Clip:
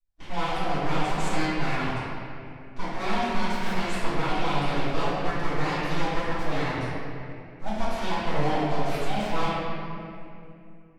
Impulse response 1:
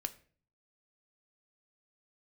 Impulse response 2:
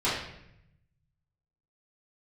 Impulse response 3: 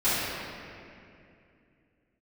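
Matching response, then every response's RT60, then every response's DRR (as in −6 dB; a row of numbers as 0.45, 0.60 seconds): 3; 0.45, 0.75, 2.5 seconds; 8.0, −11.5, −16.5 decibels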